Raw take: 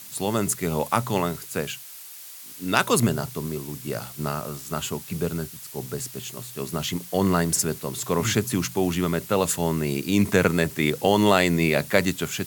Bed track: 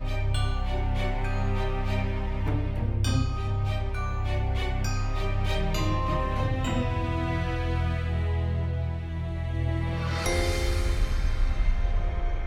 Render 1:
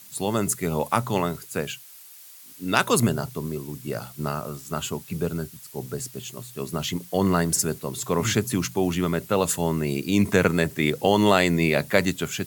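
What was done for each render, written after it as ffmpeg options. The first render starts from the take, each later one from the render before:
ffmpeg -i in.wav -af "afftdn=noise_reduction=6:noise_floor=-42" out.wav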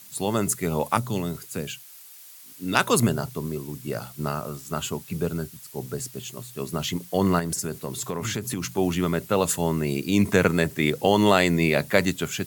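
ffmpeg -i in.wav -filter_complex "[0:a]asettb=1/sr,asplit=3[link_01][link_02][link_03];[link_01]atrim=end=0.974[link_04];[link_02]atrim=start=0.97:end=2.75,asetpts=PTS-STARTPTS,afade=type=in:duration=0.004:curve=qsin,afade=type=out:start_time=1.776:duration=0.004:curve=qsin,acrossover=split=420|3000[link_05][link_06][link_07];[link_06]acompressor=threshold=-38dB:ratio=6:attack=3.2:release=140:knee=2.83:detection=peak[link_08];[link_05][link_08][link_07]amix=inputs=3:normalize=0[link_09];[link_03]atrim=start=2.746[link_10];[link_04][link_09]acrossfade=duration=0.004:curve1=hsin:curve2=qsin[link_11];[link_11][link_10]acrossfade=duration=0.004:curve1=qsin:curve2=hsin,asettb=1/sr,asplit=3[link_12][link_13][link_14];[link_12]atrim=end=7.394[link_15];[link_13]atrim=start=7.39:end=8.78,asetpts=PTS-STARTPTS,afade=type=in:duration=0.004:curve=qsin,afade=type=out:start_time=1.386:duration=0.004:curve=qsin,acompressor=threshold=-24dB:ratio=6:attack=3.2:release=140:knee=1:detection=peak[link_16];[link_14]atrim=start=8.776[link_17];[link_15][link_16]acrossfade=duration=0.004:curve1=hsin:curve2=qsin[link_18];[link_18][link_17]acrossfade=duration=0.004:curve1=qsin:curve2=hsin" out.wav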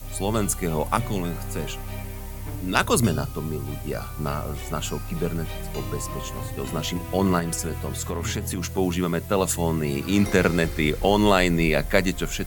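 ffmpeg -i in.wav -i bed.wav -filter_complex "[1:a]volume=-6.5dB[link_01];[0:a][link_01]amix=inputs=2:normalize=0" out.wav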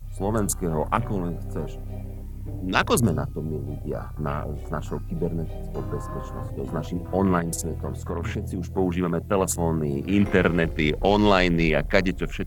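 ffmpeg -i in.wav -af "afwtdn=0.0224" out.wav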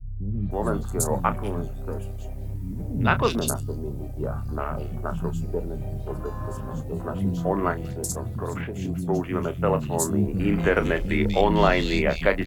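ffmpeg -i in.wav -filter_complex "[0:a]asplit=2[link_01][link_02];[link_02]adelay=30,volume=-11.5dB[link_03];[link_01][link_03]amix=inputs=2:normalize=0,acrossover=split=230|3000[link_04][link_05][link_06];[link_05]adelay=320[link_07];[link_06]adelay=510[link_08];[link_04][link_07][link_08]amix=inputs=3:normalize=0" out.wav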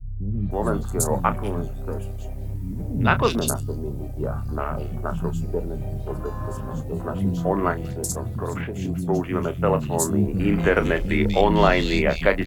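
ffmpeg -i in.wav -af "volume=2dB" out.wav

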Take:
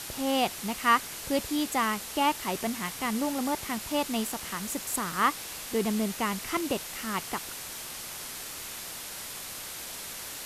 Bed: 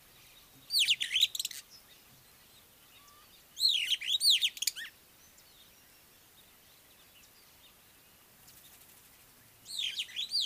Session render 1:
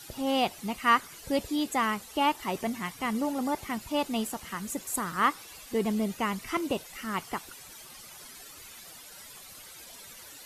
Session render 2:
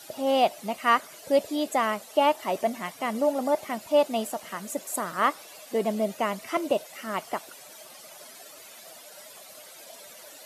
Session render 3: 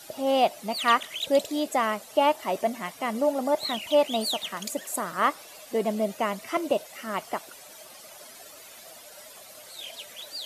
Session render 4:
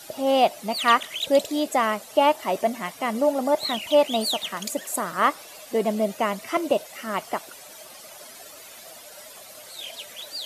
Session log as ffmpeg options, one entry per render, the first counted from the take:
ffmpeg -i in.wav -af "afftdn=noise_reduction=13:noise_floor=-40" out.wav
ffmpeg -i in.wav -af "highpass=200,equalizer=frequency=620:width_type=o:width=0.41:gain=14.5" out.wav
ffmpeg -i in.wav -i bed.wav -filter_complex "[1:a]volume=-5.5dB[link_01];[0:a][link_01]amix=inputs=2:normalize=0" out.wav
ffmpeg -i in.wav -af "volume=3dB" out.wav

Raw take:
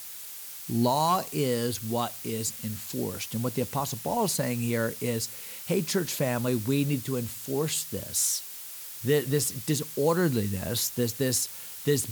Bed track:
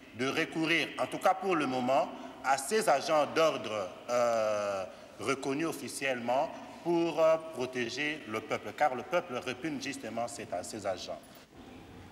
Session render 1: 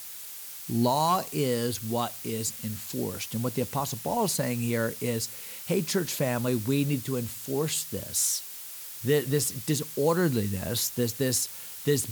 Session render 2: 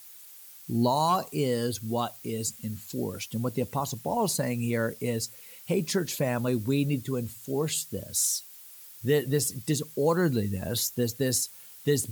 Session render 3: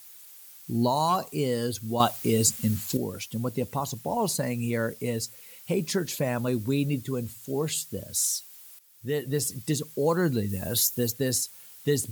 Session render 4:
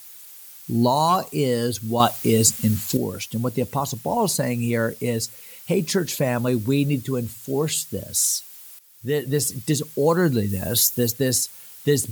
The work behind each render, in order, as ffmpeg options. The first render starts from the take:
ffmpeg -i in.wav -af anull out.wav
ffmpeg -i in.wav -af "afftdn=noise_reduction=10:noise_floor=-41" out.wav
ffmpeg -i in.wav -filter_complex "[0:a]asettb=1/sr,asplit=3[link_01][link_02][link_03];[link_01]atrim=end=10.494[link_04];[link_02]atrim=start=10.49:end=11.12,asetpts=PTS-STARTPTS,afade=type=in:duration=0.004:curve=qsin,afade=type=out:start_time=0.626:duration=0.004:curve=qsin,highshelf=frequency=6800:gain=8.5[link_05];[link_03]atrim=start=11.116[link_06];[link_04][link_05]acrossfade=duration=0.004:curve1=hsin:curve2=qsin[link_07];[link_07][link_06]acrossfade=duration=0.004:curve1=qsin:curve2=hsin,asplit=4[link_08][link_09][link_10][link_11];[link_08]atrim=end=2.002[link_12];[link_09]atrim=start=1.998:end=2.972,asetpts=PTS-STARTPTS,volume=9dB[link_13];[link_10]atrim=start=2.968:end=8.79,asetpts=PTS-STARTPTS,afade=type=out:start_time=5.818:duration=0.004:curve=hsin:silence=0.188365[link_14];[link_11]atrim=start=8.79,asetpts=PTS-STARTPTS,afade=type=in:duration=0.72:silence=0.188365[link_15];[link_12][link_13]acrossfade=duration=0.004:curve1=hsin:curve2=hsin[link_16];[link_14][link_15]concat=n=2:v=0:a=1[link_17];[link_16][link_17]acrossfade=duration=0.004:curve1=hsin:curve2=hsin" out.wav
ffmpeg -i in.wav -af "volume=5.5dB,alimiter=limit=-3dB:level=0:latency=1" out.wav

